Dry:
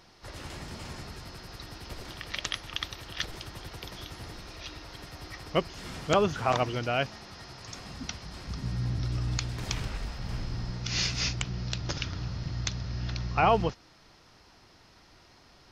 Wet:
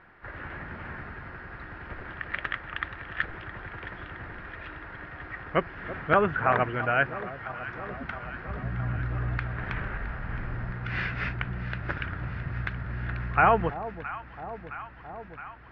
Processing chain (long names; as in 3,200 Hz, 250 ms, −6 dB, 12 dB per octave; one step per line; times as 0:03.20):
low-pass filter 2,300 Hz 24 dB per octave
parametric band 1,600 Hz +12.5 dB 0.69 octaves
on a send: delay that swaps between a low-pass and a high-pass 333 ms, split 920 Hz, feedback 84%, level −12.5 dB